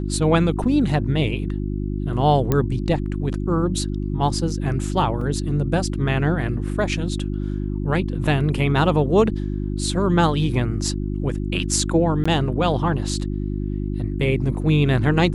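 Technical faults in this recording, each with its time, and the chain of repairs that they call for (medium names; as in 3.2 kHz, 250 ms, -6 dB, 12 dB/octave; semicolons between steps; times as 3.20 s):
hum 50 Hz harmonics 7 -25 dBFS
2.52 s: pop -7 dBFS
5.21 s: dropout 3.3 ms
12.24–12.26 s: dropout 15 ms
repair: de-click; de-hum 50 Hz, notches 7; interpolate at 5.21 s, 3.3 ms; interpolate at 12.24 s, 15 ms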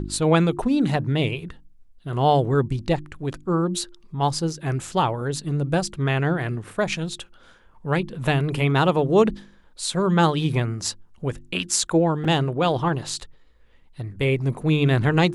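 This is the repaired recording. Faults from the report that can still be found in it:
nothing left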